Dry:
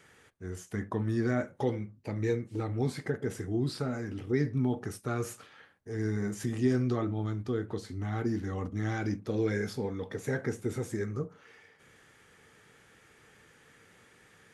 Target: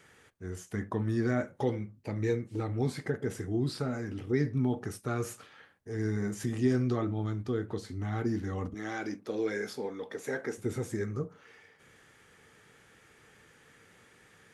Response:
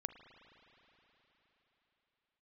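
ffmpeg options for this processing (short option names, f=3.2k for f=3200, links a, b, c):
-filter_complex "[0:a]asettb=1/sr,asplit=3[a][b][c];[a]atrim=end=8.744[d];[b]atrim=start=8.74:end=10.58,asetpts=PTS-STARTPTS,afade=t=in:d=0.004:c=qsin,afade=t=out:st=1.836:d=0.004:c=qsin,highpass=300[e];[c]atrim=start=10.576[f];[d][e]acrossfade=d=0.004:c1=hsin:c2=qsin[g];[g][f]acrossfade=d=0.004:c1=qsin:c2=hsin"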